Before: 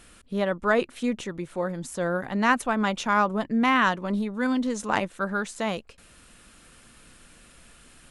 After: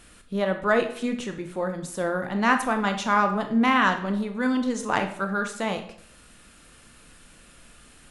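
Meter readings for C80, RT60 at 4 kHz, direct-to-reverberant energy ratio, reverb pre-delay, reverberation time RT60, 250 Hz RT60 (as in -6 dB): 13.0 dB, 0.45 s, 6.0 dB, 21 ms, 0.65 s, 0.65 s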